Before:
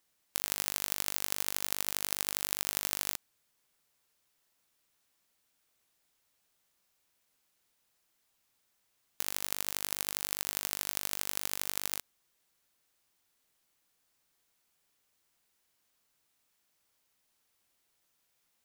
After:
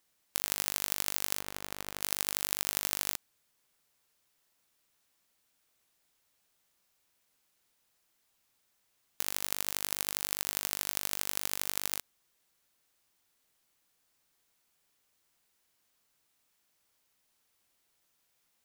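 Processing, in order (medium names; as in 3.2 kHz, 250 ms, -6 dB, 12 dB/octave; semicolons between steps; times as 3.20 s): 1.39–2.01 s: treble shelf 2.9 kHz -11.5 dB; trim +1 dB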